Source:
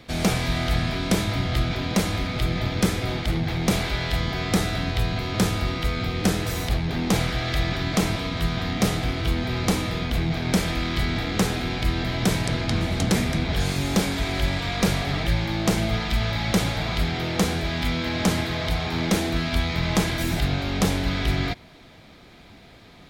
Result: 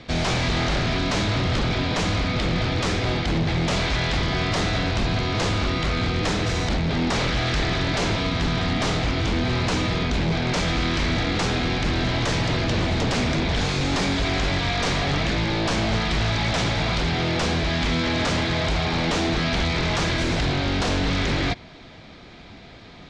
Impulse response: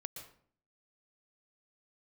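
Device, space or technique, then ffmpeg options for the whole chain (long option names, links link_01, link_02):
synthesiser wavefolder: -af "aeval=exprs='0.0841*(abs(mod(val(0)/0.0841+3,4)-2)-1)':channel_layout=same,lowpass=frequency=6500:width=0.5412,lowpass=frequency=6500:width=1.3066,volume=4.5dB"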